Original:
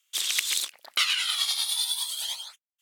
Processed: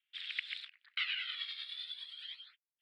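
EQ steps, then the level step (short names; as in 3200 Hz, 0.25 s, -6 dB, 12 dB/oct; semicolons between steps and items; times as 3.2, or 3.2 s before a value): running mean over 7 samples; steep high-pass 1600 Hz 36 dB/oct; air absorption 270 m; -3.0 dB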